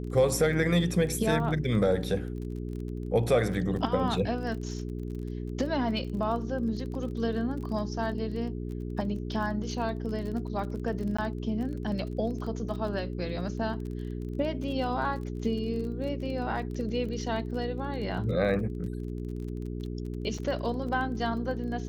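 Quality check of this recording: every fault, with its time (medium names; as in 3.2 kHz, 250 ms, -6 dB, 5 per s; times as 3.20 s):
crackle 27 per s -37 dBFS
hum 60 Hz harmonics 7 -35 dBFS
11.17–11.19 s: dropout 15 ms
20.38 s: dropout 4.8 ms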